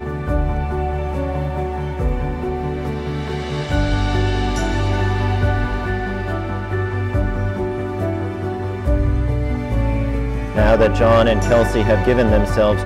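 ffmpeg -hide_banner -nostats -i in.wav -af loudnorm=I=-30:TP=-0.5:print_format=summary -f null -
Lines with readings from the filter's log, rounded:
Input Integrated:    -18.6 LUFS
Input True Peak:      -6.8 dBTP
Input LRA:             6.7 LU
Input Threshold:     -28.6 LUFS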